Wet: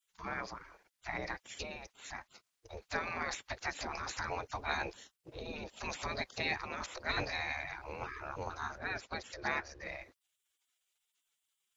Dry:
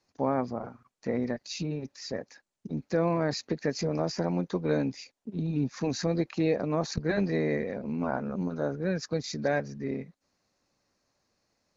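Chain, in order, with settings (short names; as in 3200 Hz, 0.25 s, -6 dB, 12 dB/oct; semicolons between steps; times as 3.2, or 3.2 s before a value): 8.78–9.81 LPF 3200 Hz 6 dB/oct; spectral gate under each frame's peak -20 dB weak; gain +7.5 dB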